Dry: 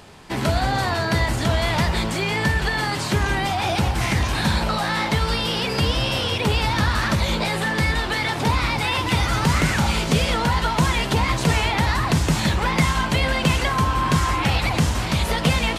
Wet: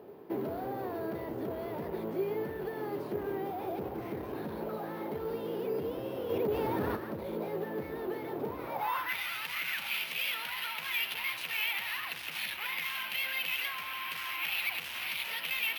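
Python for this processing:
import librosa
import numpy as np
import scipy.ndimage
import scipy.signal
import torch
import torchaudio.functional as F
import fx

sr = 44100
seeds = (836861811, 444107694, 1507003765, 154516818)

y = scipy.signal.sosfilt(scipy.signal.butter(2, 76.0, 'highpass', fs=sr, output='sos'), x)
y = fx.rider(y, sr, range_db=5, speed_s=0.5)
y = np.clip(10.0 ** (22.5 / 20.0) * y, -1.0, 1.0) / 10.0 ** (22.5 / 20.0)
y = fx.filter_sweep_bandpass(y, sr, from_hz=400.0, to_hz=2600.0, start_s=8.59, end_s=9.22, q=3.0)
y = np.repeat(scipy.signal.resample_poly(y, 1, 3), 3)[:len(y)]
y = fx.env_flatten(y, sr, amount_pct=70, at=(6.29, 6.95), fade=0.02)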